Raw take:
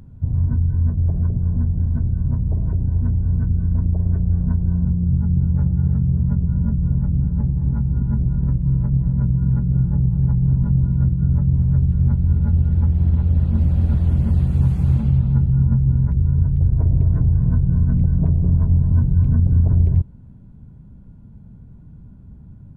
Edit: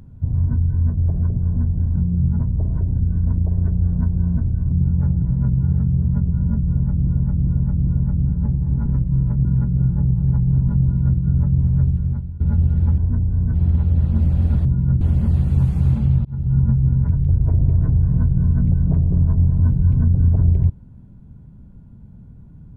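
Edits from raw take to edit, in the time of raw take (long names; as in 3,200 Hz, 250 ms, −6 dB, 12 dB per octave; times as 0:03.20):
0:01.96–0:02.31: swap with 0:04.85–0:05.28
0:02.90–0:03.46: move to 0:12.93
0:06.82–0:07.22: repeat, 4 plays
0:07.81–0:08.40: remove
0:08.99–0:09.40: move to 0:05.78
0:10.77–0:11.13: duplicate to 0:14.04
0:11.78–0:12.35: fade out, to −21.5 dB
0:15.28–0:15.59: fade in
0:16.13–0:16.42: remove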